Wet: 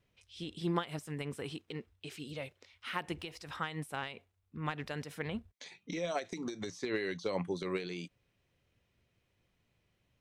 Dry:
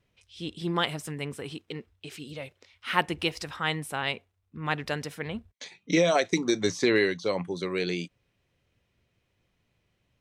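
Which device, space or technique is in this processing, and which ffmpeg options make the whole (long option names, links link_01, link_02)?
de-esser from a sidechain: -filter_complex "[0:a]asplit=2[link_01][link_02];[link_02]highpass=5100,apad=whole_len=450138[link_03];[link_01][link_03]sidechaincompress=threshold=-45dB:ratio=10:attack=1.4:release=90,volume=-3dB"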